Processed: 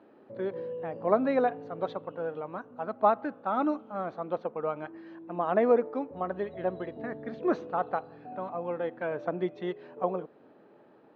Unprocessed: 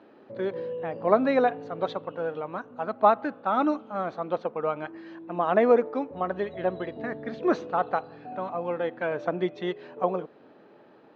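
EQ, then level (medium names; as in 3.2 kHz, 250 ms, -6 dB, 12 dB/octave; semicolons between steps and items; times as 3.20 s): treble shelf 2.3 kHz -8 dB; -3.0 dB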